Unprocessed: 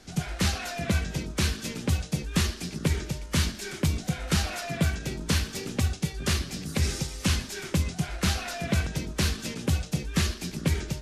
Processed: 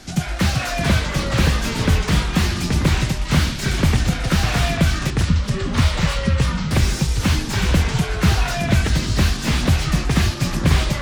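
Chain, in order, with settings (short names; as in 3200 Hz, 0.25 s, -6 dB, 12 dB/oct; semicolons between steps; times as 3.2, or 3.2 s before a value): 5.1–6.71 spectral contrast raised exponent 3.9; bell 440 Hz -9.5 dB 0.27 oct; in parallel at +0.5 dB: compressor, threshold -32 dBFS, peak gain reduction 12 dB; on the sum: echoes that change speed 0.341 s, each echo -4 st, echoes 3; slew limiter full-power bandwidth 140 Hz; gain +5 dB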